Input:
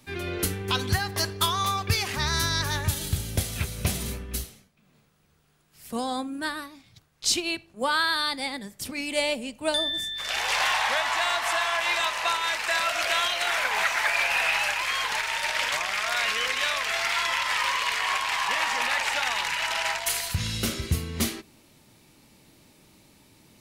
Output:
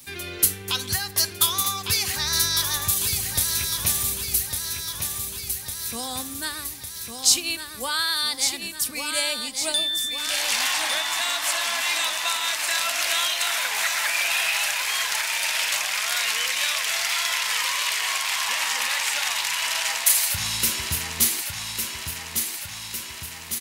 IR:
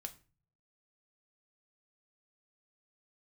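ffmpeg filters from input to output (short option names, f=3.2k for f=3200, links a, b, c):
-filter_complex "[0:a]aecho=1:1:1154|2308|3462|4616|5770|6924|8078:0.447|0.246|0.135|0.0743|0.0409|0.0225|0.0124,asplit=2[a][b];[b]acompressor=threshold=-42dB:ratio=6,volume=2.5dB[c];[a][c]amix=inputs=2:normalize=0,crystalizer=i=5.5:c=0,volume=-8.5dB"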